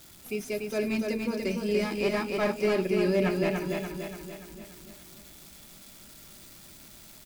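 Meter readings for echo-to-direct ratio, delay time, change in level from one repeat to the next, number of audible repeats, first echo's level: -2.5 dB, 0.29 s, -5.5 dB, 6, -4.0 dB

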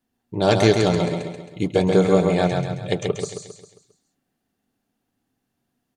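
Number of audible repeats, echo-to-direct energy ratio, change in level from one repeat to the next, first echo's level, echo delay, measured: 5, -3.5 dB, -6.5 dB, -4.5 dB, 0.134 s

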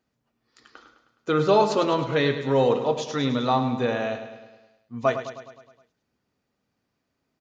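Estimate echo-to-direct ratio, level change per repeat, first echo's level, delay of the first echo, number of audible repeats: -9.0 dB, -5.0 dB, -10.5 dB, 0.104 s, 6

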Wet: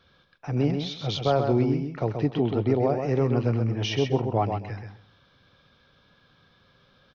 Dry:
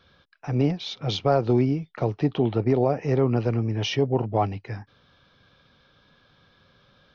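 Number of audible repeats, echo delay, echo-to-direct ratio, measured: 3, 0.131 s, -6.0 dB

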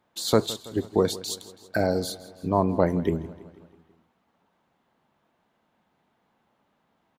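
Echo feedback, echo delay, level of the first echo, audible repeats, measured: 56%, 0.164 s, -18.0 dB, 4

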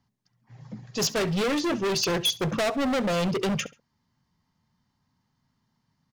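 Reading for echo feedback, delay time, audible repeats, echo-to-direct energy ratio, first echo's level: 27%, 68 ms, 2, -19.0 dB, -19.5 dB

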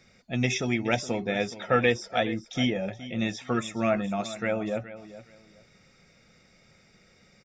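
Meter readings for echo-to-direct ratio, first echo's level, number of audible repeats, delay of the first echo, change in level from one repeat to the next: -15.0 dB, -15.0 dB, 2, 0.42 s, -13.0 dB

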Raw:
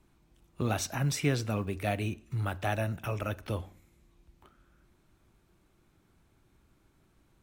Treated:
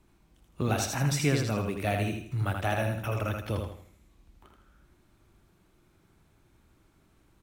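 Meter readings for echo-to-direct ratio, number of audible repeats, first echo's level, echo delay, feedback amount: -4.0 dB, 4, -4.5 dB, 80 ms, 37%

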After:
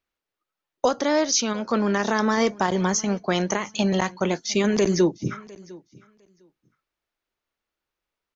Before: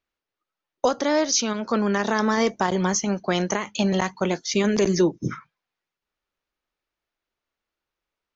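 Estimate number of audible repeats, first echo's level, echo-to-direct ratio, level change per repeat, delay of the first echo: 1, -22.5 dB, -22.5 dB, no steady repeat, 0.704 s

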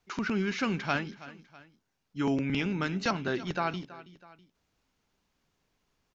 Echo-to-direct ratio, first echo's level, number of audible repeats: -16.5 dB, -17.5 dB, 2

